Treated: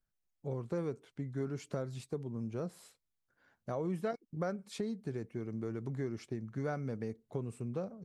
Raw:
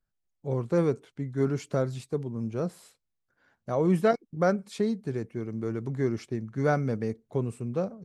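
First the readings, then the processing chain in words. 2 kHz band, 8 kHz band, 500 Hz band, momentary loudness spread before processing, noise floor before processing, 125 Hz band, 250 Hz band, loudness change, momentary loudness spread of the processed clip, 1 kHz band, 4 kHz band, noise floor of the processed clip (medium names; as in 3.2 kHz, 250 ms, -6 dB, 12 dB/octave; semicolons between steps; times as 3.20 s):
-11.5 dB, -7.0 dB, -11.0 dB, 8 LU, -81 dBFS, -9.0 dB, -9.5 dB, -10.5 dB, 5 LU, -12.0 dB, -7.0 dB, -84 dBFS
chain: compression 3:1, threshold -32 dBFS, peak gain reduction 10.5 dB; trim -3.5 dB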